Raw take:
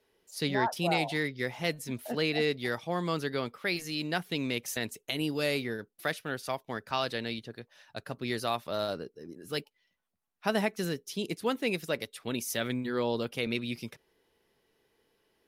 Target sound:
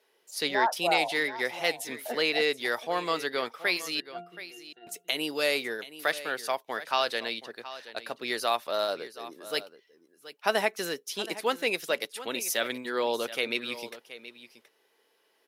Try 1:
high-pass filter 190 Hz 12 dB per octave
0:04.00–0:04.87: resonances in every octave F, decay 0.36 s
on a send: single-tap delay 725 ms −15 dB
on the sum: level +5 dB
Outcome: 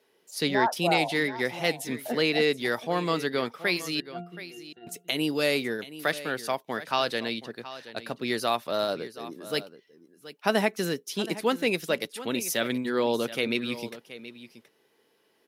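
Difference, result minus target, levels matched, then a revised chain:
250 Hz band +7.0 dB
high-pass filter 470 Hz 12 dB per octave
0:04.00–0:04.87: resonances in every octave F, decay 0.36 s
on a send: single-tap delay 725 ms −15 dB
on the sum: level +5 dB

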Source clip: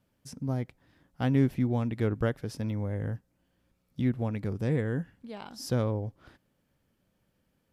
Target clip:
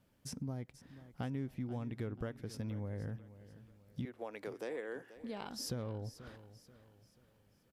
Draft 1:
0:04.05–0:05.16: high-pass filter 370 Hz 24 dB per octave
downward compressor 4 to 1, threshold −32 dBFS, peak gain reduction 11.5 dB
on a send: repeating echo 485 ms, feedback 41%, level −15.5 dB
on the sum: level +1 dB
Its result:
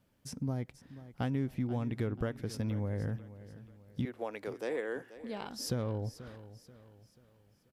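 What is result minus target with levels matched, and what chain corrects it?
downward compressor: peak gain reduction −6.5 dB
0:04.05–0:05.16: high-pass filter 370 Hz 24 dB per octave
downward compressor 4 to 1, threshold −40.5 dBFS, peak gain reduction 18 dB
on a send: repeating echo 485 ms, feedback 41%, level −15.5 dB
on the sum: level +1 dB

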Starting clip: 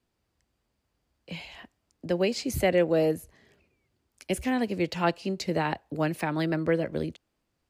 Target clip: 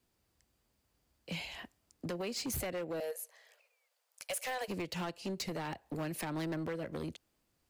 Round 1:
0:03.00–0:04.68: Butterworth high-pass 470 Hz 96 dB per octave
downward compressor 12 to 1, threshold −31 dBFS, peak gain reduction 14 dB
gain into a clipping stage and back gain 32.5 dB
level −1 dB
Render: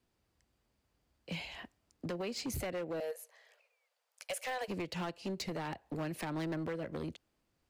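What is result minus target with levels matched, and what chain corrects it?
8,000 Hz band −4.0 dB
0:03.00–0:04.68: Butterworth high-pass 470 Hz 96 dB per octave
downward compressor 12 to 1, threshold −31 dBFS, peak gain reduction 14 dB
high-shelf EQ 6,500 Hz +9.5 dB
gain into a clipping stage and back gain 32.5 dB
level −1 dB

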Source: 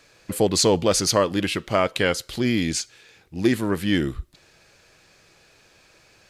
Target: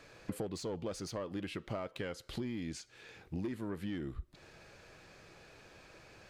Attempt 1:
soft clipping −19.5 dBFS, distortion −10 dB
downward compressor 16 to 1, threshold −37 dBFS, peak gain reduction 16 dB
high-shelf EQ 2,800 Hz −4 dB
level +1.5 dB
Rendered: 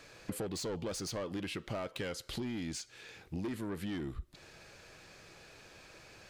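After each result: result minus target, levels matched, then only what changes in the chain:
soft clipping: distortion +7 dB; 4,000 Hz band +3.5 dB
change: soft clipping −13 dBFS, distortion −17 dB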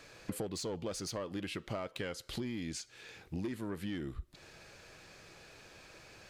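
4,000 Hz band +3.5 dB
change: high-shelf EQ 2,800 Hz −10.5 dB

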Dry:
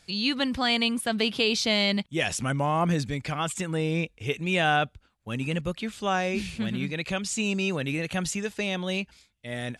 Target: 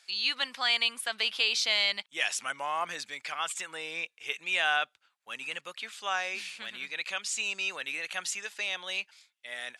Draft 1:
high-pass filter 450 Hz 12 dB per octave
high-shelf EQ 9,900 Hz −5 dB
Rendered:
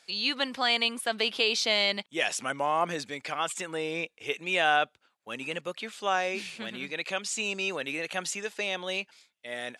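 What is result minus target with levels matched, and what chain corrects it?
500 Hz band +9.0 dB
high-pass filter 1,100 Hz 12 dB per octave
high-shelf EQ 9,900 Hz −5 dB

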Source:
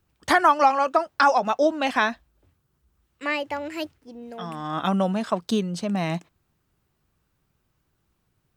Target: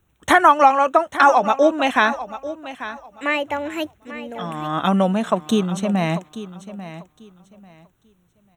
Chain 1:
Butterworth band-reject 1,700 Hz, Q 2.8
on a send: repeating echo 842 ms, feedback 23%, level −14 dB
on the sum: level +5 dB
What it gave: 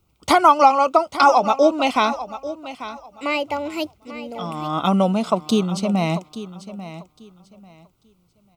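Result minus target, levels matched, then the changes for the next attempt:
2,000 Hz band −5.5 dB
change: Butterworth band-reject 4,800 Hz, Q 2.8

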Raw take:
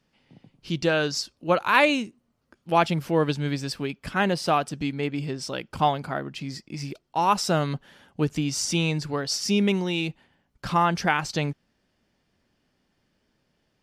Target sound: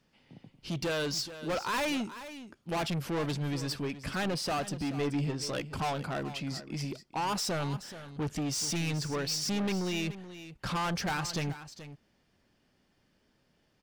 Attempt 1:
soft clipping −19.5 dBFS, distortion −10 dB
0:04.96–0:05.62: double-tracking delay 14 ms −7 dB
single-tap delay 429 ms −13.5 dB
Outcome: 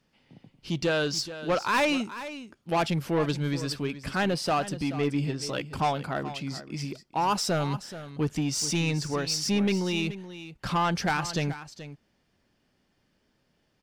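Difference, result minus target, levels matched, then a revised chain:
soft clipping: distortion −6 dB
soft clipping −29 dBFS, distortion −4 dB
0:04.96–0:05.62: double-tracking delay 14 ms −7 dB
single-tap delay 429 ms −13.5 dB

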